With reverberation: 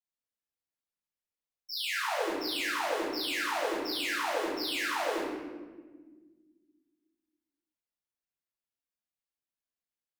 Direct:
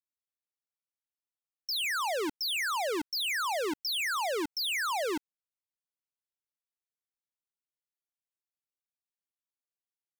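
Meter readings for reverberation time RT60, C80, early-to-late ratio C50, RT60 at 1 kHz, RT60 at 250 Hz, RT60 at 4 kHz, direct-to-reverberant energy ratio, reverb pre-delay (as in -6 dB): 1.5 s, 1.5 dB, -1.0 dB, 1.2 s, 2.6 s, 0.90 s, -14.5 dB, 3 ms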